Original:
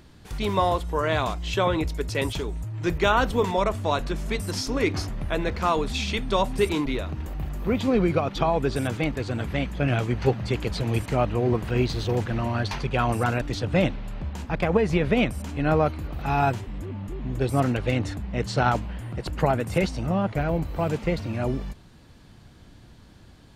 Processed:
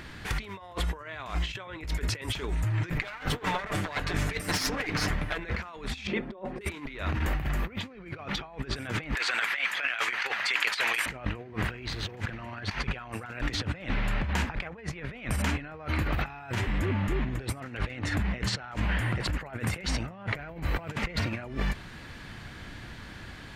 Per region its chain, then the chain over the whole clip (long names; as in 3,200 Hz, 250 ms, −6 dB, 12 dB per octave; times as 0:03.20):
0:02.90–0:05.39: lower of the sound and its delayed copy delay 6.7 ms + amplitude tremolo 2.3 Hz, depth 62%
0:06.07–0:06.61: resonant band-pass 390 Hz, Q 1.7 + comb filter 5.6 ms, depth 76%
0:09.15–0:11.06: high-pass filter 1,200 Hz + compressor whose output falls as the input rises −39 dBFS, ratio −0.5
whole clip: parametric band 1,900 Hz +12.5 dB 1.5 octaves; brickwall limiter −12.5 dBFS; compressor whose output falls as the input rises −31 dBFS, ratio −0.5